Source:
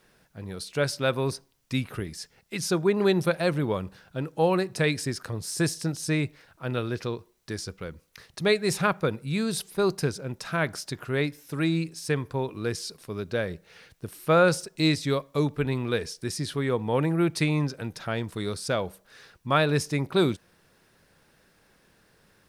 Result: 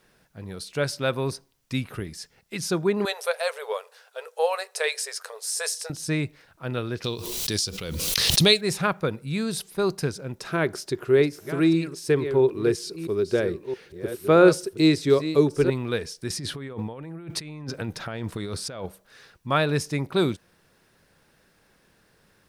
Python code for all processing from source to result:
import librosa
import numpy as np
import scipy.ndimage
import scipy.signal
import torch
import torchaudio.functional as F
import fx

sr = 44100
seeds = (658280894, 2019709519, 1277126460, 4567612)

y = fx.chain(x, sr, fx.brickwall_highpass(low_hz=410.0),
    fx.peak_eq(hz=8900.0, db=6.0, octaves=1.5),
    fx.doubler(ms=12.0, db=-14.0), at=(3.05, 5.9))
y = fx.chain(y, sr, fx.high_shelf_res(hz=2400.0, db=10.0, q=1.5),
    fx.pre_swell(db_per_s=27.0), at=(7.04, 8.61))
y = fx.chain(y, sr, fx.reverse_delay(ms=668, wet_db=-11),
    fx.peak_eq(hz=380.0, db=15.0, octaves=0.44), at=(10.4, 15.7))
y = fx.chain(y, sr, fx.peak_eq(hz=12000.0, db=-4.5, octaves=2.1),
    fx.over_compress(threshold_db=-34.0, ratio=-1.0), at=(16.3, 18.86))